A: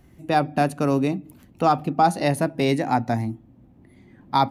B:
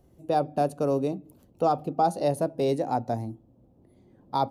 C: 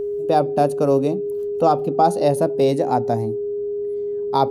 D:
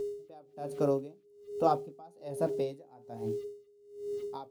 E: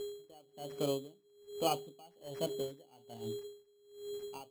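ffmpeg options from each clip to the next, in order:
-af "equalizer=f=250:t=o:w=1:g=-3,equalizer=f=500:t=o:w=1:g=9,equalizer=f=2000:t=o:w=1:g=-12,volume=0.447"
-af "aeval=exprs='val(0)+0.0355*sin(2*PI*410*n/s)':c=same,volume=2.24"
-af "flanger=delay=7.2:depth=7.1:regen=-60:speed=0.51:shape=sinusoidal,aeval=exprs='val(0)*gte(abs(val(0)),0.00708)':c=same,aeval=exprs='val(0)*pow(10,-28*(0.5-0.5*cos(2*PI*1.2*n/s))/20)':c=same,volume=0.531"
-af "acrusher=samples=12:mix=1:aa=0.000001,volume=0.501"

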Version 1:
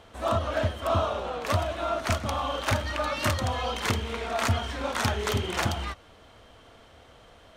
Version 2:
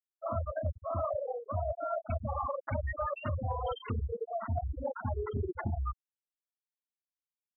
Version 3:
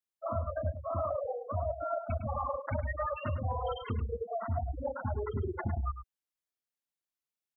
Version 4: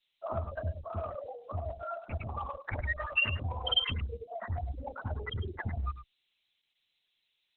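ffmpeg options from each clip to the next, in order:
-af "afftfilt=real='re*gte(hypot(re,im),0.141)':imag='im*gte(hypot(re,im),0.141)':win_size=1024:overlap=0.75,areverse,acompressor=threshold=0.02:ratio=16,areverse,volume=1.58"
-filter_complex "[0:a]asplit=2[s0][s1];[s1]adelay=105,volume=0.316,highshelf=f=4000:g=-2.36[s2];[s0][s2]amix=inputs=2:normalize=0"
-af "aexciter=amount=11.9:drive=5.3:freq=2100,adynamicequalizer=threshold=0.00355:dfrequency=410:dqfactor=0.82:tfrequency=410:tqfactor=0.82:attack=5:release=100:ratio=0.375:range=4:mode=cutabove:tftype=bell" -ar 48000 -c:a libopus -b:a 6k

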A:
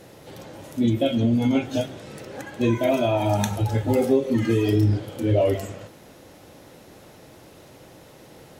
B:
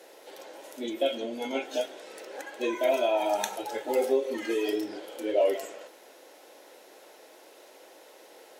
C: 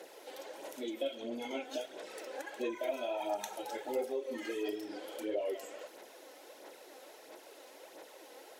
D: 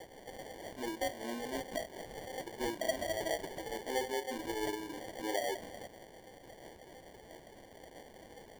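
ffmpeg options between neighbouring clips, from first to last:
-af "highpass=f=380:w=0.5412,highpass=f=380:w=1.3066,bandreject=f=1200:w=11,volume=0.75"
-af "aphaser=in_gain=1:out_gain=1:delay=4:decay=0.46:speed=1.5:type=sinusoidal,acompressor=threshold=0.0126:ratio=2,volume=0.75"
-af "acrusher=samples=34:mix=1:aa=0.000001"

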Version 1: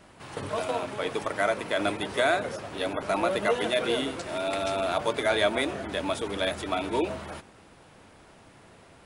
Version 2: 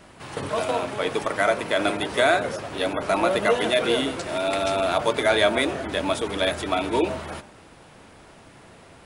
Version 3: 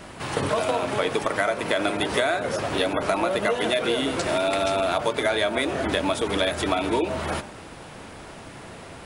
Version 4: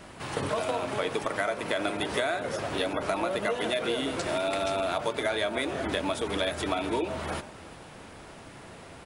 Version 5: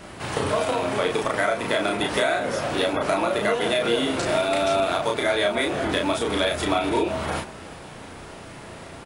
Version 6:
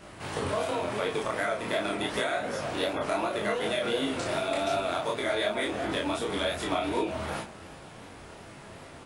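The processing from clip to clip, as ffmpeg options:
-af "bandreject=f=100.2:t=h:w=4,bandreject=f=200.4:t=h:w=4,bandreject=f=300.6:t=h:w=4,bandreject=f=400.8:t=h:w=4,bandreject=f=501:t=h:w=4,bandreject=f=601.2:t=h:w=4,bandreject=f=701.4:t=h:w=4,bandreject=f=801.6:t=h:w=4,bandreject=f=901.8:t=h:w=4,bandreject=f=1002:t=h:w=4,bandreject=f=1102.2:t=h:w=4,bandreject=f=1202.4:t=h:w=4,bandreject=f=1302.6:t=h:w=4,bandreject=f=1402.8:t=h:w=4,bandreject=f=1503:t=h:w=4,bandreject=f=1603.2:t=h:w=4,volume=1.78"
-af "acompressor=threshold=0.0398:ratio=6,volume=2.37"
-af "aecho=1:1:365:0.106,volume=0.531"
-filter_complex "[0:a]asplit=2[s0][s1];[s1]adelay=34,volume=0.708[s2];[s0][s2]amix=inputs=2:normalize=0,volume=1.68"
-af "flanger=delay=18.5:depth=6.4:speed=2.7,volume=0.668"

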